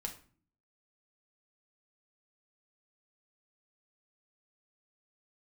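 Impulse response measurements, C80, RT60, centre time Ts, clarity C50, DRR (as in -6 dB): 16.0 dB, 0.45 s, 13 ms, 11.0 dB, 2.0 dB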